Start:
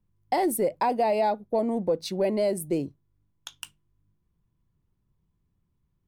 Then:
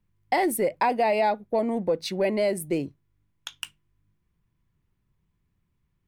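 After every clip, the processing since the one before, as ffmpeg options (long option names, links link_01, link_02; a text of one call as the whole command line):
ffmpeg -i in.wav -af "equalizer=frequency=2100:width_type=o:width=1.3:gain=8.5" out.wav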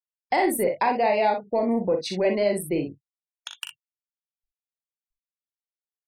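ffmpeg -i in.wav -filter_complex "[0:a]afftfilt=real='re*gte(hypot(re,im),0.00708)':imag='im*gte(hypot(re,im),0.00708)':win_size=1024:overlap=0.75,asplit=2[link_01][link_02];[link_02]aecho=0:1:39|60:0.447|0.376[link_03];[link_01][link_03]amix=inputs=2:normalize=0" out.wav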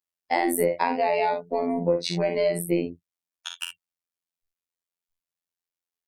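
ffmpeg -i in.wav -filter_complex "[0:a]acrossover=split=200[link_01][link_02];[link_02]acompressor=threshold=-22dB:ratio=6[link_03];[link_01][link_03]amix=inputs=2:normalize=0,afftfilt=real='hypot(re,im)*cos(PI*b)':imag='0':win_size=2048:overlap=0.75,volume=5.5dB" out.wav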